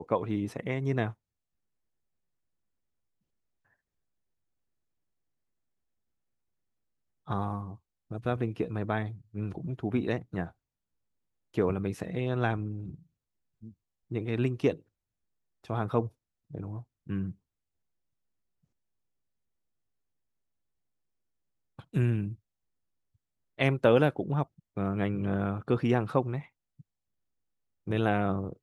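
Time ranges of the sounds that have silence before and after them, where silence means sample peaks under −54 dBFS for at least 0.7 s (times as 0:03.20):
0:07.27–0:10.52
0:11.54–0:14.82
0:15.64–0:17.35
0:21.79–0:22.35
0:23.58–0:26.81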